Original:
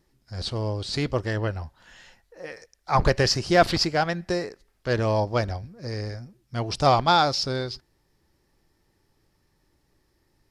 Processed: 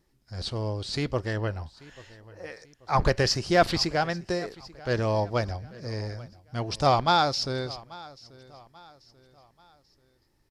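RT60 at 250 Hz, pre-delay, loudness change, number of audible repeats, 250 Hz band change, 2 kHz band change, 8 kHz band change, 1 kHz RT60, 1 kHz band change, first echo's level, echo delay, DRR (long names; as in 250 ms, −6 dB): no reverb audible, no reverb audible, −2.5 dB, 2, −2.5 dB, −2.5 dB, −2.5 dB, no reverb audible, −2.5 dB, −21.0 dB, 837 ms, no reverb audible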